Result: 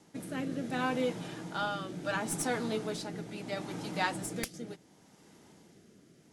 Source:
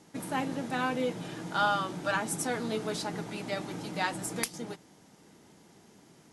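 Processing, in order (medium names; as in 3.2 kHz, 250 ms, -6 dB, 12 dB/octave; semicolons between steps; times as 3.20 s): tracing distortion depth 0.033 ms; rotary cabinet horn 0.7 Hz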